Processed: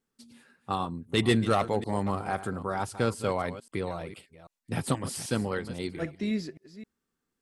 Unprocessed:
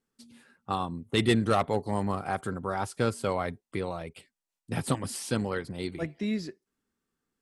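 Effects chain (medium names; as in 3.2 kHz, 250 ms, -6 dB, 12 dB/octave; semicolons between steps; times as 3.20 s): chunks repeated in reverse 263 ms, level -13.5 dB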